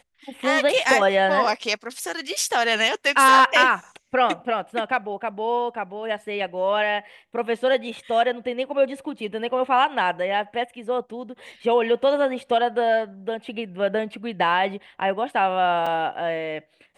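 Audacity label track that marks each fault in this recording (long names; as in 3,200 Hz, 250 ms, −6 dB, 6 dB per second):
15.860000	15.860000	drop-out 4.5 ms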